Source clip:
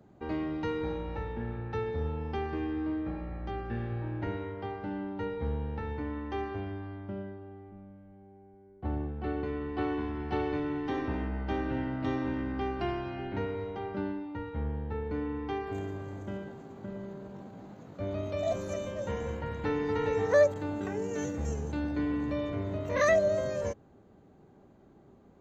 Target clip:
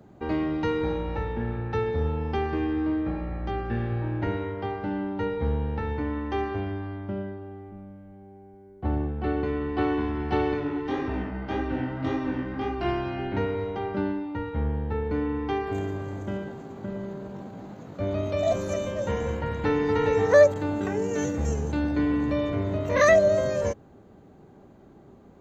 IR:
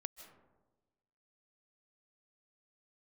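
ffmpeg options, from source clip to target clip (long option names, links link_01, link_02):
-filter_complex "[0:a]asplit=3[link_01][link_02][link_03];[link_01]afade=type=out:start_time=10.53:duration=0.02[link_04];[link_02]flanger=delay=18:depth=7.1:speed=1.8,afade=type=in:start_time=10.53:duration=0.02,afade=type=out:start_time=12.84:duration=0.02[link_05];[link_03]afade=type=in:start_time=12.84:duration=0.02[link_06];[link_04][link_05][link_06]amix=inputs=3:normalize=0,volume=6.5dB"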